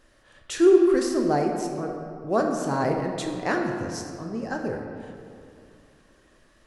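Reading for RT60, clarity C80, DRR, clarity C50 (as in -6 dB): 2.5 s, 4.5 dB, 2.0 dB, 3.5 dB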